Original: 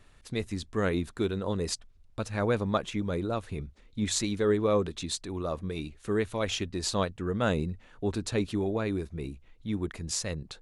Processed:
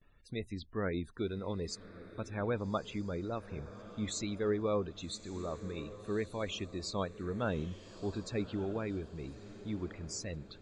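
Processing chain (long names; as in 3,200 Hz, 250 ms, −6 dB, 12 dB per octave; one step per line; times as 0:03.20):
spectral peaks only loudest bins 64
noise gate with hold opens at −50 dBFS
feedback delay with all-pass diffusion 1,190 ms, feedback 42%, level −14.5 dB
level −7 dB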